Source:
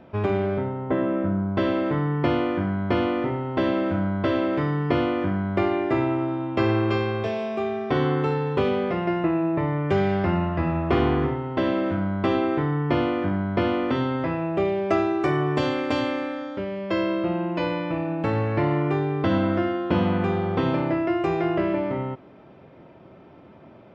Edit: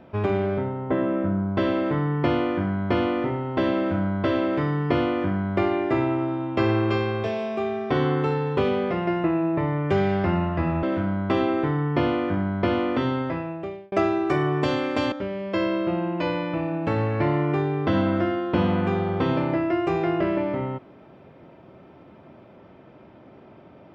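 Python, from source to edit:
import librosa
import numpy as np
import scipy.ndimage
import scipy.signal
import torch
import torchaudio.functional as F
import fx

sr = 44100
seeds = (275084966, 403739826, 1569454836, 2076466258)

y = fx.edit(x, sr, fx.cut(start_s=10.83, length_s=0.94),
    fx.fade_out_span(start_s=14.1, length_s=0.76),
    fx.cut(start_s=16.06, length_s=0.43), tone=tone)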